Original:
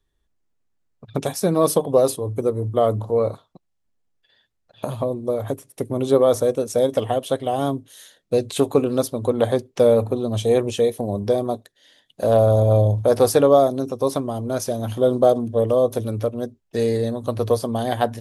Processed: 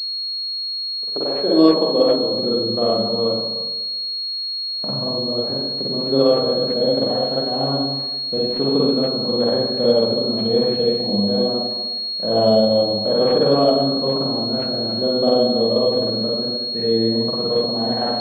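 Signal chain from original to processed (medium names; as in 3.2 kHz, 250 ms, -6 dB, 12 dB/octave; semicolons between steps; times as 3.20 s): spring tank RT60 1.2 s, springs 44/50/59 ms, chirp 30 ms, DRR -6 dB; high-pass sweep 370 Hz -> 180 Hz, 1.36–2.70 s; class-D stage that switches slowly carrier 4.3 kHz; trim -8 dB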